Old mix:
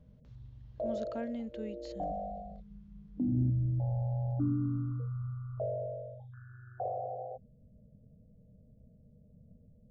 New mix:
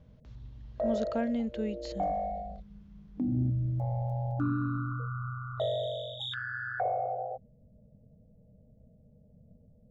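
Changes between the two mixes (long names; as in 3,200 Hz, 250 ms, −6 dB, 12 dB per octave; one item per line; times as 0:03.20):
speech +7.5 dB
background: remove Bessel low-pass filter 510 Hz, order 4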